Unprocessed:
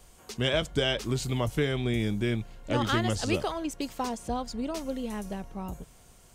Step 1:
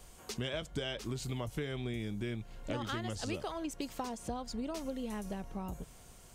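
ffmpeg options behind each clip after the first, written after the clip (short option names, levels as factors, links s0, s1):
-af "acompressor=threshold=0.0158:ratio=4"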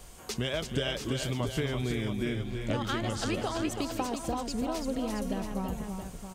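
-af "aecho=1:1:247|332|675:0.158|0.473|0.355,volume=1.88"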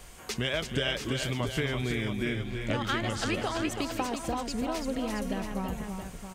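-af "equalizer=f=2000:w=1.1:g=6"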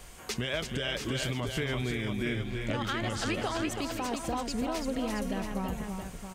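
-af "alimiter=limit=0.0841:level=0:latency=1:release=52"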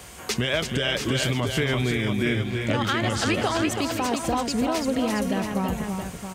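-af "highpass=f=57:w=0.5412,highpass=f=57:w=1.3066,volume=2.51"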